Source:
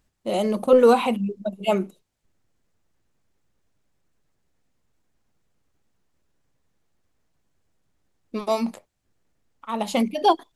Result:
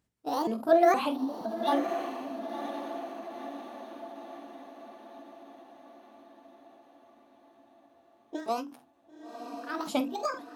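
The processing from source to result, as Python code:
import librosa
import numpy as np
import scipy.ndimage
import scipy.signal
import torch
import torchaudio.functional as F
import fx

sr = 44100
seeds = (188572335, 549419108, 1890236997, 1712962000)

y = fx.pitch_ramps(x, sr, semitones=8.0, every_ms=470)
y = scipy.signal.sosfilt(scipy.signal.butter(2, 98.0, 'highpass', fs=sr, output='sos'), y)
y = fx.low_shelf(y, sr, hz=350.0, db=6.0)
y = fx.hum_notches(y, sr, base_hz=50, count=5)
y = fx.doubler(y, sr, ms=49.0, db=-13)
y = fx.echo_diffused(y, sr, ms=1003, feedback_pct=56, wet_db=-9)
y = fx.end_taper(y, sr, db_per_s=120.0)
y = F.gain(torch.from_numpy(y), -7.0).numpy()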